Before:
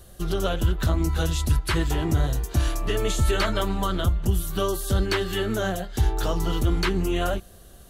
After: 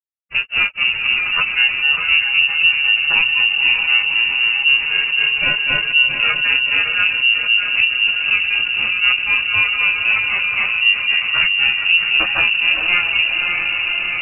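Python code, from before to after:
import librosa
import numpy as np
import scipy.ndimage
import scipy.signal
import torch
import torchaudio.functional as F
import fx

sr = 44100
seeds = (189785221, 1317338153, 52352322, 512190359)

p1 = scipy.signal.sosfilt(scipy.signal.butter(2, 63.0, 'highpass', fs=sr, output='sos'), x)
p2 = fx.low_shelf(p1, sr, hz=170.0, db=6.0)
p3 = fx.rider(p2, sr, range_db=4, speed_s=2.0)
p4 = p2 + F.gain(torch.from_numpy(p3), 0.0).numpy()
p5 = np.sign(p4) * np.maximum(np.abs(p4) - 10.0 ** (-28.0 / 20.0), 0.0)
p6 = fx.harmonic_tremolo(p5, sr, hz=1.5, depth_pct=50, crossover_hz=480.0)
p7 = fx.granulator(p6, sr, seeds[0], grain_ms=100.0, per_s=7.0, spray_ms=100.0, spread_st=0)
p8 = fx.stretch_vocoder(p7, sr, factor=1.8)
p9 = fx.echo_diffused(p8, sr, ms=568, feedback_pct=49, wet_db=-12.5)
p10 = fx.freq_invert(p9, sr, carrier_hz=2800)
y = fx.env_flatten(p10, sr, amount_pct=70)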